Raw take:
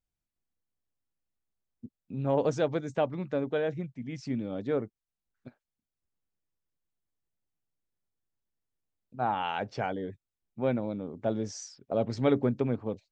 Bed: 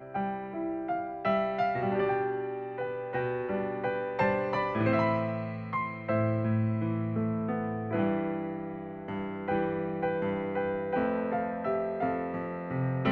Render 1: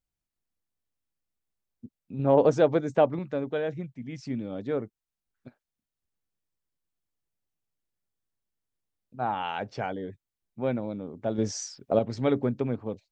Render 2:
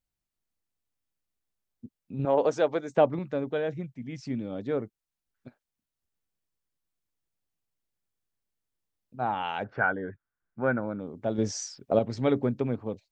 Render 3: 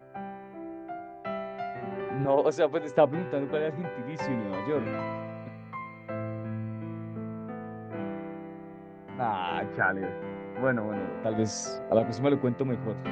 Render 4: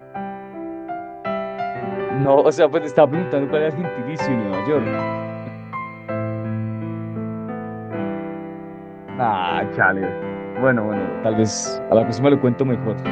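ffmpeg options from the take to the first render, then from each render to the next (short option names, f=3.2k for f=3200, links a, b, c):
-filter_complex "[0:a]asettb=1/sr,asplit=3[a][b][c];[a]atrim=end=2.194[d];[b]atrim=start=2.19:end=3.19,asetpts=PTS-STARTPTS,afade=t=in:d=0.004:c=qsin,afade=t=out:st=0.996:d=0.004:c=qsin,equalizer=f=510:w=0.32:g=7[e];[c]atrim=start=3.186[f];[d][e]acrossfade=d=0.004:c1=hsin:c2=qsin[g];[g][f]acrossfade=d=0.004:c1=qsin:c2=hsin,asettb=1/sr,asplit=3[h][i][j];[h]atrim=end=11.384[k];[i]atrim=start=11.38:end=11.99,asetpts=PTS-STARTPTS,afade=t=in:d=0.004:c=qsin,afade=t=out:st=0.606:d=0.004:c=qsin,acontrast=67[l];[j]atrim=start=11.986[m];[k][l]acrossfade=d=0.004:c1=hsin:c2=qsin[n];[n][m]acrossfade=d=0.004:c1=qsin:c2=hsin"
-filter_complex "[0:a]asettb=1/sr,asplit=3[a][b][c];[a]atrim=end=2.254[d];[b]atrim=start=2.25:end=2.97,asetpts=PTS-STARTPTS,afade=t=in:d=0.004:c=qsin,afade=t=out:st=0.716:d=0.004:c=qsin,highpass=f=590:p=1[e];[c]atrim=start=2.966[f];[d][e]acrossfade=d=0.004:c1=hsin:c2=qsin[g];[g][f]acrossfade=d=0.004:c1=qsin:c2=hsin,asettb=1/sr,asplit=3[h][i][j];[h]atrim=end=9.644[k];[i]atrim=start=9.64:end=11,asetpts=PTS-STARTPTS,afade=t=in:d=0.004:c=qsin,afade=t=out:st=1.356:d=0.004:c=qsin,lowpass=f=1.5k:t=q:w=6.9[l];[j]atrim=start=10.996[m];[k][l]acrossfade=d=0.004:c1=hsin:c2=qsin[n];[n][m]acrossfade=d=0.004:c1=qsin:c2=hsin"
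-filter_complex "[1:a]volume=-7dB[a];[0:a][a]amix=inputs=2:normalize=0"
-af "volume=10dB,alimiter=limit=-2dB:level=0:latency=1"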